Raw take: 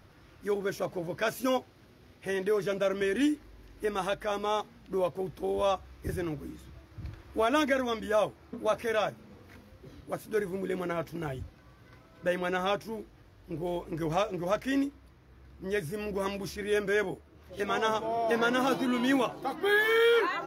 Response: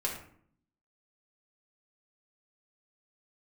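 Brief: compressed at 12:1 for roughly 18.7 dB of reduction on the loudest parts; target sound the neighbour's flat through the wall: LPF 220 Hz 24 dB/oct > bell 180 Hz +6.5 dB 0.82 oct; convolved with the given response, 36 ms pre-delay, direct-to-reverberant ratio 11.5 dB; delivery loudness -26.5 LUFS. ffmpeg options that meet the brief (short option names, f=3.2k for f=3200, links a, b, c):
-filter_complex "[0:a]acompressor=threshold=-41dB:ratio=12,asplit=2[a][b];[1:a]atrim=start_sample=2205,adelay=36[c];[b][c]afir=irnorm=-1:irlink=0,volume=-16.5dB[d];[a][d]amix=inputs=2:normalize=0,lowpass=f=220:w=0.5412,lowpass=f=220:w=1.3066,equalizer=f=180:t=o:w=0.82:g=6.5,volume=24dB"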